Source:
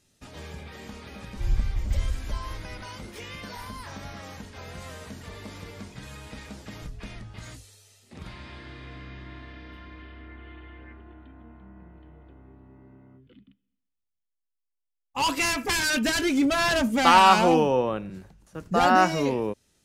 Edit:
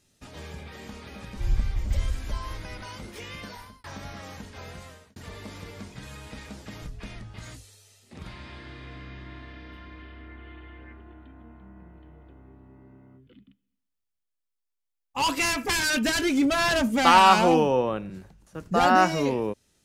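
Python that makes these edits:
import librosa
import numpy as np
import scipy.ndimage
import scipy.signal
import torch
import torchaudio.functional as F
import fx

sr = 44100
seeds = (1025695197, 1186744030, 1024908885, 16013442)

y = fx.edit(x, sr, fx.fade_out_span(start_s=3.43, length_s=0.41),
    fx.fade_out_span(start_s=4.66, length_s=0.5), tone=tone)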